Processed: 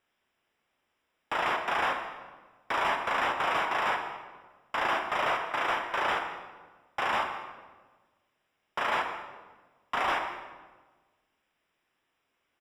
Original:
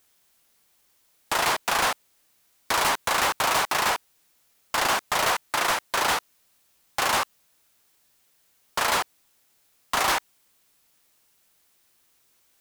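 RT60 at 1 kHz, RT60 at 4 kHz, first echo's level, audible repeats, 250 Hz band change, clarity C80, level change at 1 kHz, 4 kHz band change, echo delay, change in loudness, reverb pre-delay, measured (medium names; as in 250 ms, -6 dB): 1.3 s, 0.95 s, -19.0 dB, 1, -4.5 dB, 7.5 dB, -3.5 dB, -10.0 dB, 203 ms, -5.5 dB, 14 ms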